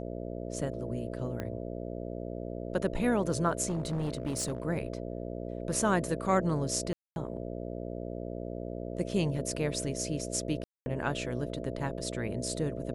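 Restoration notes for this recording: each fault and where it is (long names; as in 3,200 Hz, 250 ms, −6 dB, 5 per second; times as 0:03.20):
mains buzz 60 Hz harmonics 11 −38 dBFS
0:01.40: click −22 dBFS
0:03.68–0:04.65: clipping −28 dBFS
0:06.93–0:07.16: drop-out 231 ms
0:10.64–0:10.86: drop-out 220 ms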